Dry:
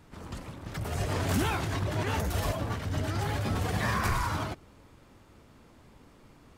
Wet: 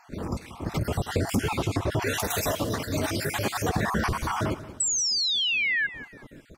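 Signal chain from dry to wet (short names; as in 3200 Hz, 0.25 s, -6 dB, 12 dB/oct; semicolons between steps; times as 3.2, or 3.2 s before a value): random spectral dropouts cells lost 45%; 2.02–3.69 tilt +2.5 dB/oct; 4.8–5.87 painted sound fall 1600–8100 Hz -25 dBFS; compressor, threshold -32 dBFS, peak gain reduction 8.5 dB; bell 340 Hz +6.5 dB 2.4 oct; feedback echo 0.183 s, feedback 28%, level -15.5 dB; gain +7 dB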